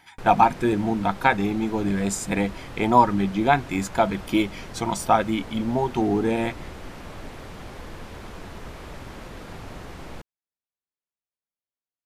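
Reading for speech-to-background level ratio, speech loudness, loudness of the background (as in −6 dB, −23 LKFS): 17.0 dB, −23.0 LKFS, −40.0 LKFS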